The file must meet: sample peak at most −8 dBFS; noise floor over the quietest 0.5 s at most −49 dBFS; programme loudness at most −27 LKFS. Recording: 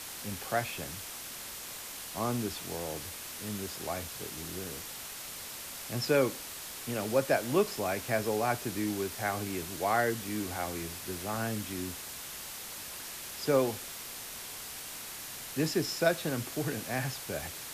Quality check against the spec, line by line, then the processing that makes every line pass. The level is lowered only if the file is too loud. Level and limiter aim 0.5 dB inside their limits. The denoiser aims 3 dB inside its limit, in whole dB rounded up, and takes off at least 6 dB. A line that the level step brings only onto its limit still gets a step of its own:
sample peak −14.0 dBFS: in spec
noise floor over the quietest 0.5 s −43 dBFS: out of spec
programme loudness −34.0 LKFS: in spec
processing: broadband denoise 9 dB, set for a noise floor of −43 dBFS

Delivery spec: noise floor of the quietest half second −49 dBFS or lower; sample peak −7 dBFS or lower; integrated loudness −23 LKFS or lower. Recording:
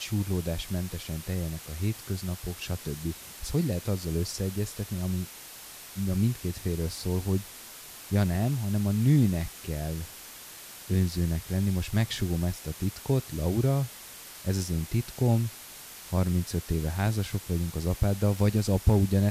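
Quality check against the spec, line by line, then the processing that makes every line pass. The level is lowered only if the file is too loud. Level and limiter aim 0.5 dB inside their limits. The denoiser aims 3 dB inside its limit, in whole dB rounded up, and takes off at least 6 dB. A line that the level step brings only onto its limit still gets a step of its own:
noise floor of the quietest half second −45 dBFS: out of spec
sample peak −11.5 dBFS: in spec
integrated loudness −29.0 LKFS: in spec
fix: broadband denoise 7 dB, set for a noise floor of −45 dBFS

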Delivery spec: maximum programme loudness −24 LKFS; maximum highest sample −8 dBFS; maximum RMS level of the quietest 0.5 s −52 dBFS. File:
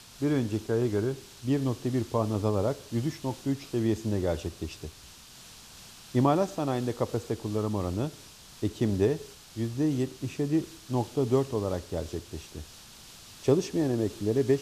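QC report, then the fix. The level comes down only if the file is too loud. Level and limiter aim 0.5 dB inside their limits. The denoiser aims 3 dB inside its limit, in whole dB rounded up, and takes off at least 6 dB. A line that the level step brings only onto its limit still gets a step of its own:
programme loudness −29.5 LKFS: in spec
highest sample −11.0 dBFS: in spec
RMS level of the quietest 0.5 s −50 dBFS: out of spec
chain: broadband denoise 6 dB, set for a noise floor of −50 dBFS

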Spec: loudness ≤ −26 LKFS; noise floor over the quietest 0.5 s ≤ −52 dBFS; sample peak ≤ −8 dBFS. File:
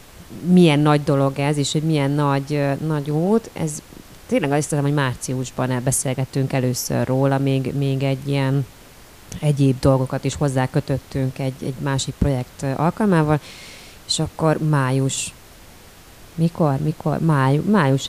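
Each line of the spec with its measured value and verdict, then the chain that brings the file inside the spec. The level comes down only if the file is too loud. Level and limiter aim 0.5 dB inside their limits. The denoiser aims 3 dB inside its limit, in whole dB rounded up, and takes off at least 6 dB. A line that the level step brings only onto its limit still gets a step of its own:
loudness −20.0 LKFS: out of spec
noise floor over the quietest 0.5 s −44 dBFS: out of spec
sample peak −4.0 dBFS: out of spec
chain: broadband denoise 6 dB, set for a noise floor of −44 dBFS
level −6.5 dB

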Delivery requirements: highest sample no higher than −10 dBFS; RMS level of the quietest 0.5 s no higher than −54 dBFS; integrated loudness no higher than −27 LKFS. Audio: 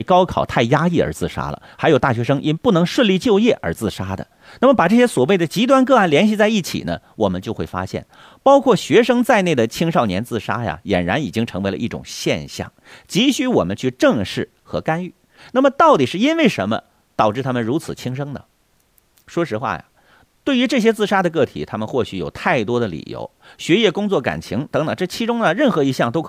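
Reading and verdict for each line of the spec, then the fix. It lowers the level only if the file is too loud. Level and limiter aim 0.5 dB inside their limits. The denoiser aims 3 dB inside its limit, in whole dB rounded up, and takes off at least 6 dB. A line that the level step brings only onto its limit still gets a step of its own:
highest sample −2.5 dBFS: out of spec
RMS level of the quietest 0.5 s −60 dBFS: in spec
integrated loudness −17.5 LKFS: out of spec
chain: level −10 dB

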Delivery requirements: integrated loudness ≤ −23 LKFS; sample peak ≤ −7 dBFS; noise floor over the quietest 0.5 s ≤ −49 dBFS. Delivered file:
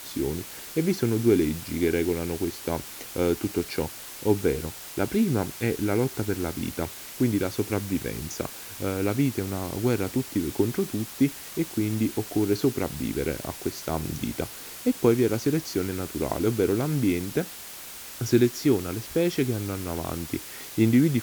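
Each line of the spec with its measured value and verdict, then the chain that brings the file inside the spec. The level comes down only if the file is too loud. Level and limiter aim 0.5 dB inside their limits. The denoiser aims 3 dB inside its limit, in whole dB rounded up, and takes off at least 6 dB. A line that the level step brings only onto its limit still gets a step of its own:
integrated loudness −27.0 LKFS: in spec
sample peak −8.0 dBFS: in spec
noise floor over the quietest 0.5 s −41 dBFS: out of spec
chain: broadband denoise 11 dB, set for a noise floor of −41 dBFS

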